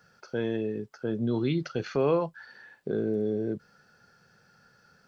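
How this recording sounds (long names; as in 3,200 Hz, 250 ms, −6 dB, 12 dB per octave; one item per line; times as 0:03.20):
background noise floor −63 dBFS
spectral slope −6.0 dB per octave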